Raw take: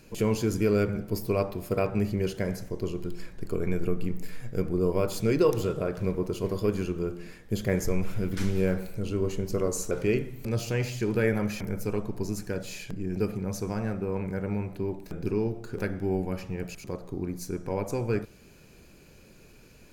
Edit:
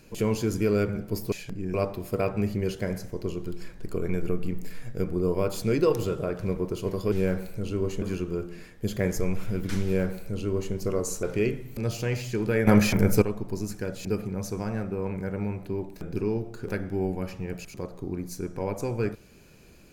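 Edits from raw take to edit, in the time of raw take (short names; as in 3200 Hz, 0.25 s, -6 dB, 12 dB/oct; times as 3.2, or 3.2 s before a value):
8.52–9.42 copy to 6.7
11.35–11.9 gain +11 dB
12.73–13.15 move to 1.32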